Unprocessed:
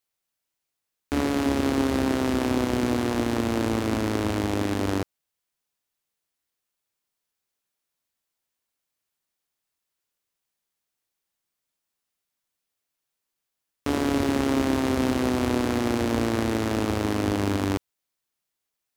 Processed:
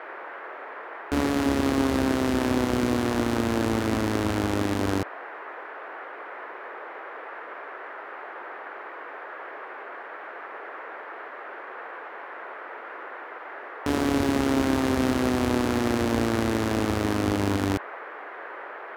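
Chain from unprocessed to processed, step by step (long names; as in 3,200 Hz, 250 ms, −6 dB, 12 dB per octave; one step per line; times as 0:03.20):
noise in a band 360–1,800 Hz −39 dBFS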